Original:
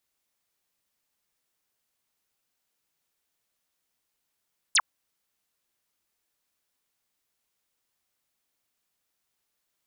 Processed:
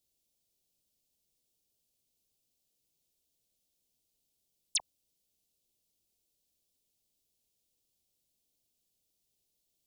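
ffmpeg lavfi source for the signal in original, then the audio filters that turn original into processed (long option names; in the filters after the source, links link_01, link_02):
-f lavfi -i "aevalsrc='0.133*clip(t/0.002,0,1)*clip((0.05-t)/0.002,0,1)*sin(2*PI*11000*0.05/log(830/11000)*(exp(log(830/11000)*t/0.05)-1))':duration=0.05:sample_rate=44100"
-af "lowshelf=frequency=140:gain=5.5,alimiter=limit=-23dB:level=0:latency=1:release=49,asuperstop=centerf=1400:order=4:qfactor=0.53"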